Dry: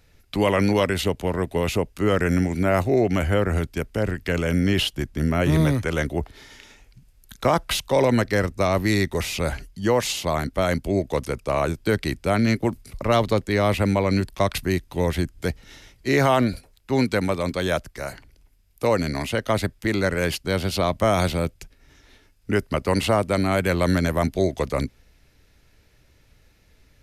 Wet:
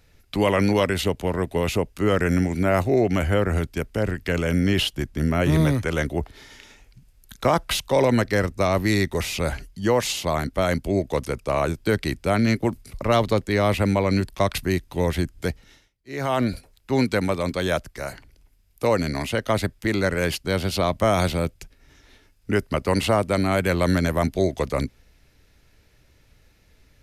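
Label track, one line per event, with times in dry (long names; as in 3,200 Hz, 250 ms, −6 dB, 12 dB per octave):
15.450000	16.520000	duck −23 dB, fades 0.45 s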